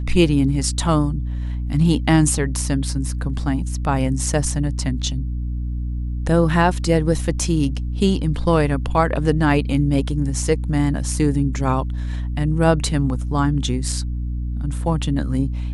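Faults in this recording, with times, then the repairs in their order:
hum 60 Hz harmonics 5 -24 dBFS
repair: de-hum 60 Hz, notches 5

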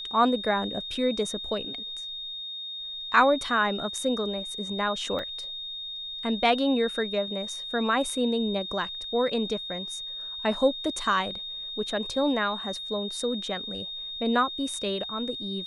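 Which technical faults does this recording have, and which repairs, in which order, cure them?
tone 3700 Hz -34 dBFS
5.19 gap 2.2 ms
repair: notch 3700 Hz, Q 30; interpolate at 5.19, 2.2 ms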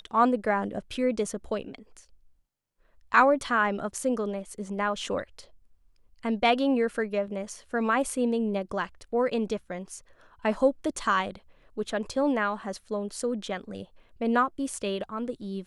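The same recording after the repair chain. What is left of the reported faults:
none

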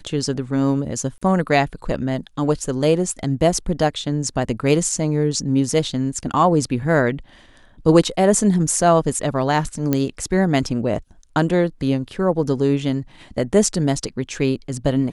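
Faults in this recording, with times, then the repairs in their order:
1.18–1.22 gap 35 ms
9.93 pop -6 dBFS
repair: de-click; interpolate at 1.18, 35 ms

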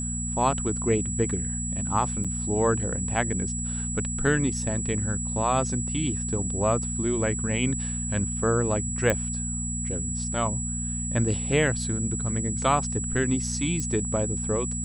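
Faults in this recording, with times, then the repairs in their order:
hum 60 Hz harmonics 4 -32 dBFS
tone 7800 Hz -31 dBFS
2.24–2.25 gap 6.4 ms
9.1 pop -10 dBFS
13.8 pop -18 dBFS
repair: de-click; de-hum 60 Hz, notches 4; notch 7800 Hz, Q 30; interpolate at 2.24, 6.4 ms

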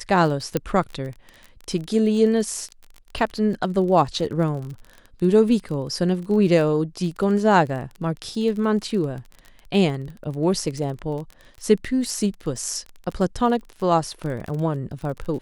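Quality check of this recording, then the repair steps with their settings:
crackle 29/s -30 dBFS
0.57 pop -8 dBFS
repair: de-click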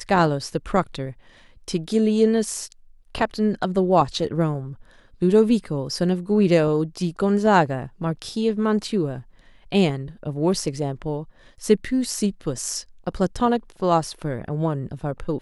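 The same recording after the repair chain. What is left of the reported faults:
none

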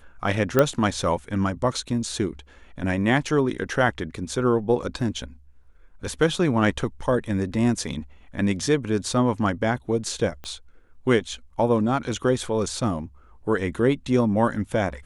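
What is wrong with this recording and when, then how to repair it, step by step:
0.59 pop -5 dBFS
10.44 pop -22 dBFS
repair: de-click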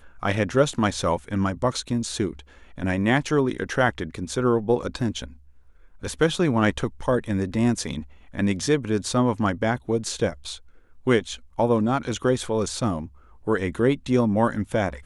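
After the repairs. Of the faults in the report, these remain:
10.44 pop

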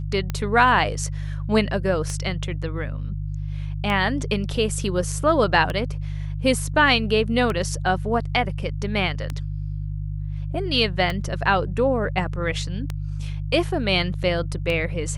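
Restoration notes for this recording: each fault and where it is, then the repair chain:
hum 50 Hz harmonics 3 -28 dBFS
tick 33 1/3 rpm -13 dBFS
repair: de-click; de-hum 50 Hz, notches 3

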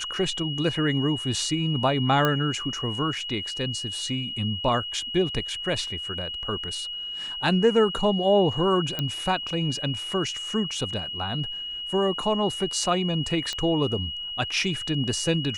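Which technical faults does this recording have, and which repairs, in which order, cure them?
tone 2900 Hz -31 dBFS
2.25 pop -9 dBFS
8.99 pop -13 dBFS
13.53 pop -17 dBFS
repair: de-click; notch 2900 Hz, Q 30

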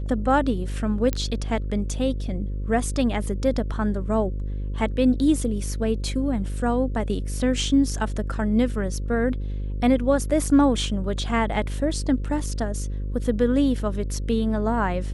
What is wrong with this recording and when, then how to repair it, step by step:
buzz 50 Hz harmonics 11 -28 dBFS
1.13 pop -11 dBFS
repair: de-click; de-hum 50 Hz, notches 11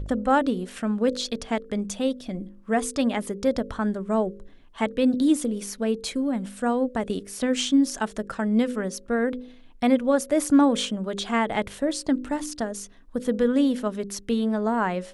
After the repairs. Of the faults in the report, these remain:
none

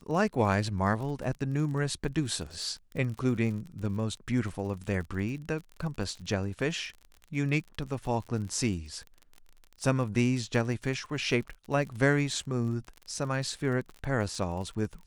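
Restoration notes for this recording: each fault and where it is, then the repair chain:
crackle 42/s -37 dBFS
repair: de-click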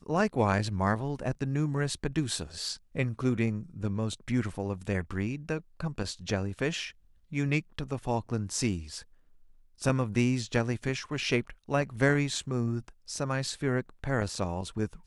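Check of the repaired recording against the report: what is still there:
none

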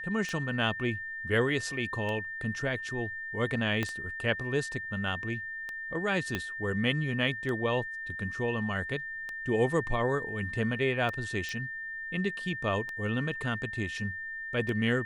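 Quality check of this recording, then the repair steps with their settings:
tick 33 1/3 rpm -23 dBFS
tone 1800 Hz -36 dBFS
3.83 pop -16 dBFS
6.35 pop -16 dBFS
11.49 pop -23 dBFS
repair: de-click; notch 1800 Hz, Q 30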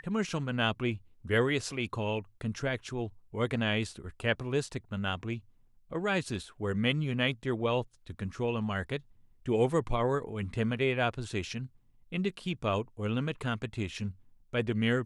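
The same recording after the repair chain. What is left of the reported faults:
3.83 pop
6.35 pop

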